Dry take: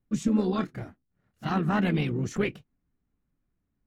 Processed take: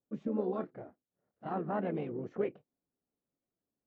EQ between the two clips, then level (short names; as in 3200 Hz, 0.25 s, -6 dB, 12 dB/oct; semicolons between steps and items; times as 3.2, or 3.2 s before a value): band-pass 550 Hz, Q 1.7; air absorption 160 m; 0.0 dB